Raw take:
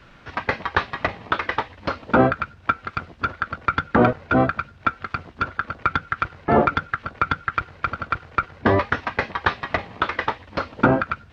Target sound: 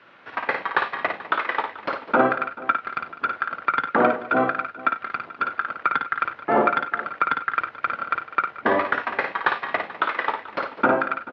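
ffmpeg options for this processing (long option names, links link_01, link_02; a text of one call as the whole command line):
ffmpeg -i in.wav -af "highpass=240,lowpass=3000,lowshelf=frequency=350:gain=-7,aecho=1:1:55|92|202|435:0.531|0.141|0.141|0.119" out.wav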